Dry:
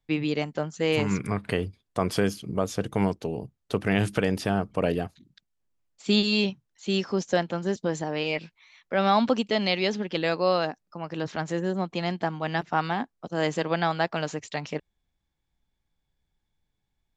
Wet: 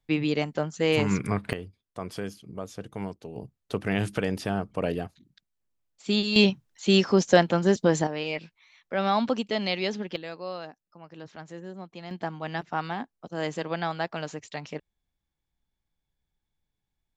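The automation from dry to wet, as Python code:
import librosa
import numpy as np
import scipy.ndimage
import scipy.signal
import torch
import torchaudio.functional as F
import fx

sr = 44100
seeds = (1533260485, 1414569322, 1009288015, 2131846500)

y = fx.gain(x, sr, db=fx.steps((0.0, 1.0), (1.53, -10.0), (3.36, -3.0), (6.36, 6.0), (8.07, -3.0), (10.16, -12.5), (12.11, -4.5)))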